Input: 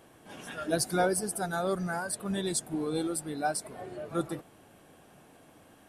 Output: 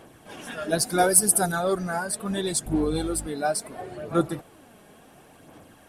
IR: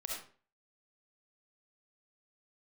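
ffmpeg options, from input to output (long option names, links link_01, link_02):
-filter_complex "[0:a]asettb=1/sr,asplit=3[link_01][link_02][link_03];[link_01]atrim=end=2.664[link_04];[link_02]atrim=start=2.66:end=3.27,asetpts=PTS-STARTPTS,afade=type=in:duration=0.004:curve=qsin,afade=type=out:start_time=0.606:duration=0.004:curve=qsin,aeval=exprs='val(0)+0.00891*(sin(2*PI*50*n/s)+sin(2*PI*2*50*n/s)/2+sin(2*PI*3*50*n/s)/3+sin(2*PI*4*50*n/s)/4+sin(2*PI*5*50*n/s)/5)':channel_layout=same[link_05];[link_03]atrim=start=3.266[link_06];[link_04][link_05]acrossfade=duration=0.004:curve1=hsin:curve2=qsin[link_07];[link_07][link_06]acrossfade=duration=0.004:curve1=qsin:curve2=hsin,aphaser=in_gain=1:out_gain=1:delay=4.9:decay=0.39:speed=0.72:type=sinusoidal,asettb=1/sr,asplit=3[link_08][link_09][link_10];[link_08]atrim=end=0.984[link_11];[link_09]atrim=start=0.98:end=1.52,asetpts=PTS-STARTPTS,afade=type=in:duration=0.004:curve=qsin,afade=type=out:start_time=0.536:duration=0.004:curve=qsin,equalizer=frequency=12000:width_type=o:width=1.4:gain=13.5[link_12];[link_10]atrim=start=1.516[link_13];[link_11][link_12]acrossfade=duration=0.004:curve1=hsin:curve2=qsin[link_14];[link_14][link_13]acrossfade=duration=0.004:curve1=qsin:curve2=hsin,volume=4.5dB"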